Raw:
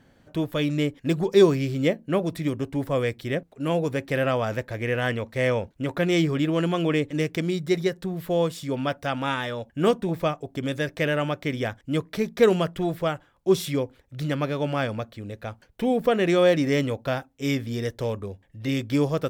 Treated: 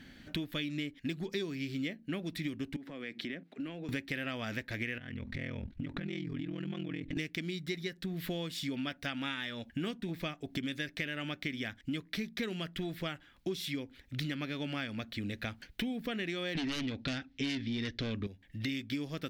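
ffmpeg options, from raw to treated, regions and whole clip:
-filter_complex "[0:a]asettb=1/sr,asplit=3[a][b][c];[a]atrim=end=2.764[d];[b]atrim=start=2.76:end=3.89,asetpts=PTS-STARTPTS,afade=t=in:d=0.004:c=qsin,afade=t=out:st=1.126:d=0.004:c=qsin,highpass=f=170:w=0.5412,highpass=f=170:w=1.3066,aemphasis=mode=reproduction:type=75kf,acompressor=threshold=-39dB:ratio=8:attack=3.2:release=140:knee=1:detection=peak[e];[c]atrim=start=3.886[f];[d][e]acrossfade=d=0.004:c1=hsin:c2=qsin[g];[g][f]acrossfade=d=0.004:c1=qsin:c2=hsin,asettb=1/sr,asplit=3[h][i][j];[h]atrim=end=4.984[k];[i]atrim=start=4.98:end=7.17,asetpts=PTS-STARTPTS,afade=t=in:d=0.004:c=qsin,afade=t=out:st=2.186:d=0.004:c=qsin,aemphasis=mode=reproduction:type=bsi,acompressor=threshold=-31dB:ratio=16:attack=3.2:release=140:knee=1:detection=peak,aeval=exprs='val(0)*sin(2*PI*21*n/s)':c=same[l];[j]atrim=start=7.166[m];[k][l]acrossfade=d=0.004:c1=hsin:c2=qsin[n];[n][m]acrossfade=d=0.004:c1=qsin:c2=hsin,asettb=1/sr,asplit=3[o][p][q];[o]atrim=end=16.554[r];[p]atrim=start=16.55:end=18.27,asetpts=PTS-STARTPTS,afade=t=in:d=0.004:c=qsin,afade=t=out:st=1.716:d=0.004:c=qsin,lowpass=f=5.2k:w=0.5412,lowpass=f=5.2k:w=1.3066,equalizer=f=840:t=o:w=1.4:g=-6,aeval=exprs='0.211*sin(PI/2*3.16*val(0)/0.211)':c=same[s];[q]atrim=start=18.266[t];[r][s]acrossfade=d=0.004:c1=hsin:c2=qsin[u];[u][t]acrossfade=d=0.004:c1=qsin:c2=hsin,equalizer=f=125:t=o:w=1:g=-7,equalizer=f=250:t=o:w=1:g=5,equalizer=f=500:t=o:w=1:g=-10,equalizer=f=1k:t=o:w=1:g=-9,equalizer=f=2k:t=o:w=1:g=6,equalizer=f=4k:t=o:w=1:g=6,equalizer=f=8k:t=o:w=1:g=-4,acompressor=threshold=-39dB:ratio=10,volume=5dB"

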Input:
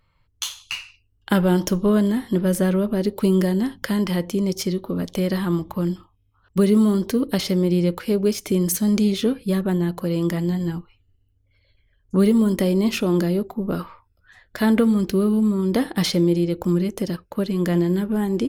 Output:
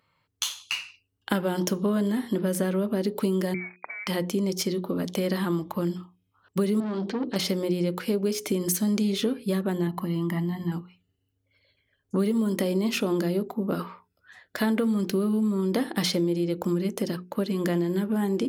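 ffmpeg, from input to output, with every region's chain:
-filter_complex "[0:a]asettb=1/sr,asplit=3[a][b][c];[a]atrim=end=3.544[d];[b]atrim=start=3.54:end=4.07,asetpts=PTS-STARTPTS,afade=t=in:d=0.004:c=qsin,afade=t=out:st=0.526:d=0.004:c=qsin,acompressor=threshold=-31dB:ratio=12:attack=3.2:release=140:knee=1:detection=peak,aeval=exprs='sgn(val(0))*max(abs(val(0))-0.00794,0)':c=same,lowpass=f=2.1k:t=q:w=0.5098,lowpass=f=2.1k:t=q:w=0.6013,lowpass=f=2.1k:t=q:w=0.9,lowpass=f=2.1k:t=q:w=2.563,afreqshift=-2500[e];[c]atrim=start=4.066[f];[d][e]acrossfade=d=0.004:c1=hsin:c2=qsin[g];[g][f]acrossfade=d=0.004:c1=qsin:c2=hsin,asettb=1/sr,asplit=3[h][i][j];[h]atrim=end=6.804[k];[i]atrim=start=6.8:end=7.36,asetpts=PTS-STARTPTS,afade=t=in:d=0.004:c=qsin,afade=t=out:st=0.556:d=0.004:c=qsin,lowpass=f=4.4k:w=0.5412,lowpass=f=4.4k:w=1.3066,bandreject=f=50:t=h:w=6,bandreject=f=100:t=h:w=6,bandreject=f=150:t=h:w=6,bandreject=f=200:t=h:w=6,bandreject=f=250:t=h:w=6,bandreject=f=300:t=h:w=6,bandreject=f=350:t=h:w=6,bandreject=f=400:t=h:w=6,aeval=exprs='(tanh(12.6*val(0)+0.3)-tanh(0.3))/12.6':c=same[l];[j]atrim=start=7.356[m];[k][l]acrossfade=d=0.004:c1=hsin:c2=qsin[n];[n][m]acrossfade=d=0.004:c1=qsin:c2=hsin,asettb=1/sr,asplit=3[o][p][q];[o]atrim=end=9.874[r];[p]atrim=start=9.87:end=10.72,asetpts=PTS-STARTPTS,afade=t=in:d=0.004:c=qsin,afade=t=out:st=0.846:d=0.004:c=qsin,equalizer=f=6.3k:t=o:w=1.6:g=-11,acompressor=threshold=-26dB:ratio=2:attack=3.2:release=140:knee=1:detection=peak,aecho=1:1:1:0.78,atrim=end_sample=37485[s];[q]atrim=start=10.716[t];[r][s]acrossfade=d=0.004:c1=hsin:c2=qsin[u];[u][t]acrossfade=d=0.004:c1=qsin:c2=hsin,highpass=160,bandreject=f=60:t=h:w=6,bandreject=f=120:t=h:w=6,bandreject=f=180:t=h:w=6,bandreject=f=240:t=h:w=6,bandreject=f=300:t=h:w=6,bandreject=f=360:t=h:w=6,bandreject=f=420:t=h:w=6,acompressor=threshold=-22dB:ratio=4"

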